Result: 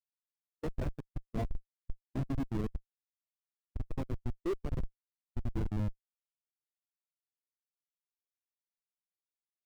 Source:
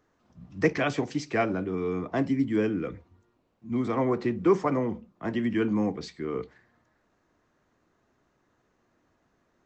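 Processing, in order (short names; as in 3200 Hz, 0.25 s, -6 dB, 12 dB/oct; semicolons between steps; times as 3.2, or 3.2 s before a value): 2.05–2.55 tone controls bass +6 dB, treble +6 dB; Schmitt trigger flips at -20.5 dBFS; spectral expander 1.5:1; gain -1.5 dB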